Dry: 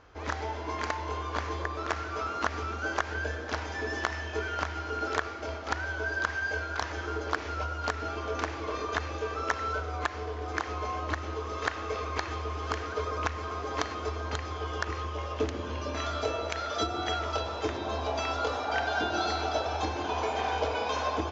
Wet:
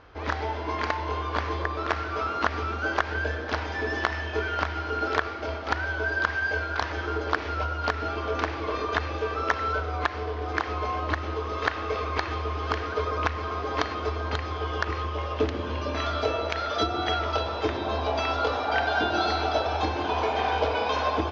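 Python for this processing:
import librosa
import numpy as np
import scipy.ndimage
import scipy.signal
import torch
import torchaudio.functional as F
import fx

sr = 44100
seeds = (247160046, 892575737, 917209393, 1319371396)

y = scipy.signal.sosfilt(scipy.signal.butter(4, 5000.0, 'lowpass', fs=sr, output='sos'), x)
y = y * 10.0 ** (4.5 / 20.0)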